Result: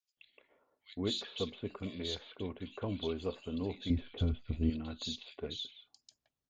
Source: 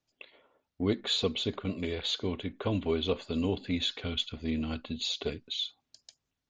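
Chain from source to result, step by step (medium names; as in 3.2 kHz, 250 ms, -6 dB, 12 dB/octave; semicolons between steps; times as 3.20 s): 3.73–4.53 s: tilt EQ -4 dB/octave; bands offset in time highs, lows 170 ms, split 2.3 kHz; trim -7 dB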